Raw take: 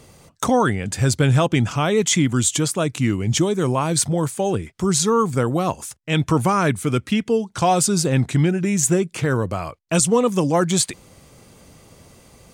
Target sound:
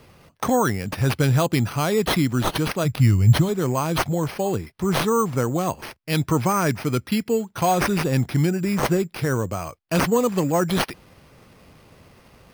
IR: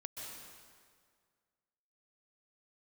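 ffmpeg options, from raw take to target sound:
-filter_complex "[0:a]asplit=3[s0][s1][s2];[s0]afade=t=out:st=2.84:d=0.02[s3];[s1]asubboost=boost=10:cutoff=110,afade=t=in:st=2.84:d=0.02,afade=t=out:st=3.48:d=0.02[s4];[s2]afade=t=in:st=3.48:d=0.02[s5];[s3][s4][s5]amix=inputs=3:normalize=0,acrusher=samples=6:mix=1:aa=0.000001,volume=0.75"

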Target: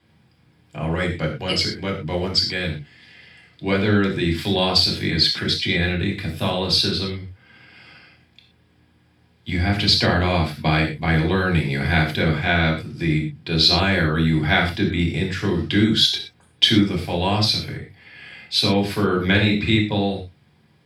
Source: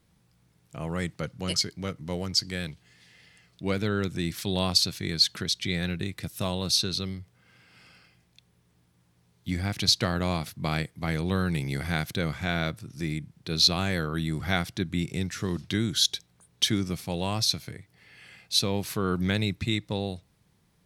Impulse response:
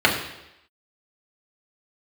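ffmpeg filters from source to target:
-filter_complex "[0:a]asettb=1/sr,asplit=3[s0][s1][s2];[s0]atrim=end=19.154[s3];[s1]atrim=start=19.15:end=19.7,asetpts=PTS-STARTPTS,afade=t=in:d=0.004:c=qsin,afade=t=out:st=0.546:d=0.004:c=qsin,asplit=2[s4][s5];[s5]adelay=43,volume=0.531[s6];[s4][s6]amix=inputs=2:normalize=0,atrim=end_sample=24255[s7];[s2]atrim=start=19.696[s8];[s3][s7]acrossfade=d=0.004:c1=hsin:c2=qsin[s9];[s9][s8]acrossfade=d=0.004:c1=qsin:c2=hsin[s10];[1:a]atrim=start_sample=2205,atrim=end_sample=6174,asetrate=48510,aresample=44100[s11];[s10][s11]afir=irnorm=-1:irlink=0,volume=0.316"

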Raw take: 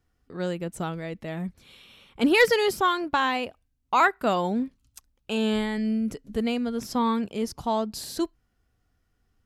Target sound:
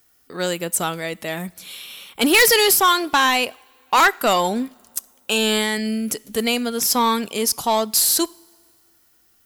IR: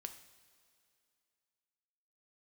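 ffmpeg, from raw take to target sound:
-filter_complex "[0:a]aemphasis=mode=production:type=riaa,asoftclip=type=tanh:threshold=0.112,asplit=2[s0][s1];[1:a]atrim=start_sample=2205,asetrate=48510,aresample=44100[s2];[s1][s2]afir=irnorm=-1:irlink=0,volume=0.398[s3];[s0][s3]amix=inputs=2:normalize=0,volume=2.51"

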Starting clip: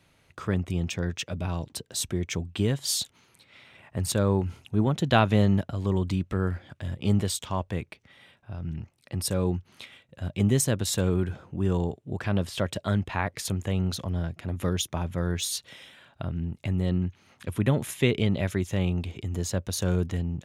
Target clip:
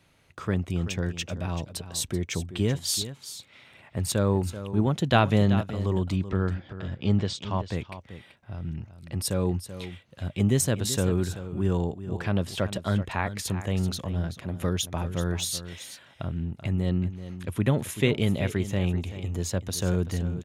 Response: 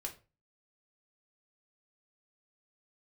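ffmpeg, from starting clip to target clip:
-filter_complex "[0:a]asettb=1/sr,asplit=3[s0][s1][s2];[s0]atrim=end=6.164[s3];[s1]atrim=start=6.16:end=7.6,asetpts=PTS-STARTPTS,afade=t=in:d=0.004:c=qsin,afade=t=out:st=1.436:d=0.004:c=qsin,lowpass=f=5700:w=0.5412,lowpass=f=5700:w=1.3066[s4];[s2]atrim=start=7.596[s5];[s3][s4]acrossfade=d=0.004:c1=hsin:c2=qsin[s6];[s6][s5]acrossfade=d=0.004:c1=qsin:c2=hsin,aecho=1:1:383:0.237"

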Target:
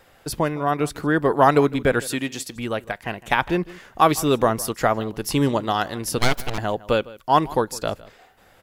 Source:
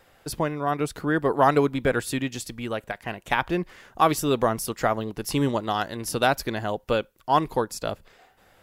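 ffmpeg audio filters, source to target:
-filter_complex "[0:a]asettb=1/sr,asplit=3[s0][s1][s2];[s0]atrim=end=2.004[s3];[s1]atrim=start=2:end=2.56,asetpts=PTS-STARTPTS,afade=t=in:d=0.004:c=qsin,afade=t=out:st=0.556:d=0.004:c=qsin,highpass=f=240:p=1[s4];[s2]atrim=start=2.556[s5];[s3][s4]acrossfade=d=0.004:c1=hsin:c2=qsin[s6];[s6][s5]acrossfade=d=0.004:c1=qsin:c2=hsin,asettb=1/sr,asplit=3[s7][s8][s9];[s7]atrim=end=6.184[s10];[s8]atrim=start=6.18:end=6.58,asetpts=PTS-STARTPTS,afade=t=in:d=0.004:c=qsin,afade=t=out:st=0.396:d=0.004:c=qsin,aeval=exprs='abs(val(0))':c=same[s11];[s9]atrim=start=6.576[s12];[s10][s11]acrossfade=d=0.004:c1=hsin:c2=qsin[s13];[s13][s12]acrossfade=d=0.004:c1=qsin:c2=hsin,asplit=2[s14][s15];[s15]adelay=157.4,volume=0.1,highshelf=f=4000:g=-3.54[s16];[s14][s16]amix=inputs=2:normalize=0,volume=1.5"

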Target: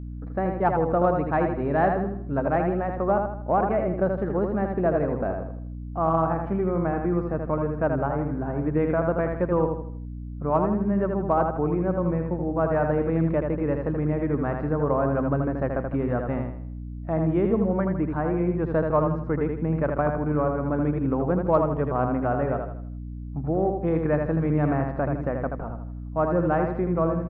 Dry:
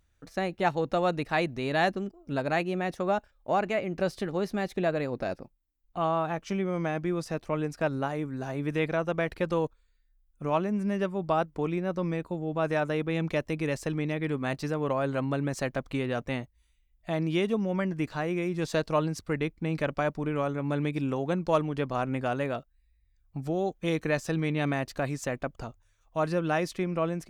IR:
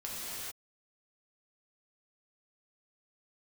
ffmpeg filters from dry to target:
-filter_complex "[0:a]lowpass=f=1400:w=0.5412,lowpass=f=1400:w=1.3066,aemphasis=mode=production:type=50fm,asplit=2[s0][s1];[s1]aecho=0:1:80|160|240|320|400:0.562|0.225|0.09|0.036|0.0144[s2];[s0][s2]amix=inputs=2:normalize=0,aeval=exprs='val(0)+0.0126*(sin(2*PI*60*n/s)+sin(2*PI*2*60*n/s)/2+sin(2*PI*3*60*n/s)/3+sin(2*PI*4*60*n/s)/4+sin(2*PI*5*60*n/s)/5)':c=same,aeval=exprs='0.224*(cos(1*acos(clip(val(0)/0.224,-1,1)))-cos(1*PI/2))+0.00251*(cos(5*acos(clip(val(0)/0.224,-1,1)))-cos(5*PI/2))':c=same,volume=1.58"

